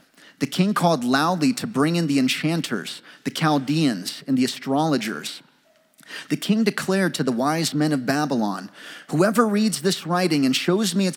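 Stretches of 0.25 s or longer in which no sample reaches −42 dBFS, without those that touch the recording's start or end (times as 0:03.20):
0:05.41–0:05.94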